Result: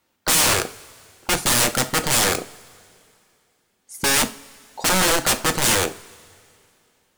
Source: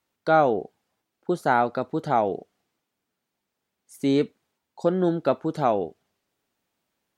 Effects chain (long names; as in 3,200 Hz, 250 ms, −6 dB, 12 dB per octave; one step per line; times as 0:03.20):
wrap-around overflow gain 24 dB
dynamic equaliser 8,600 Hz, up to +7 dB, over −46 dBFS, Q 1
coupled-rooms reverb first 0.32 s, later 2.6 s, from −21 dB, DRR 8 dB
level +9 dB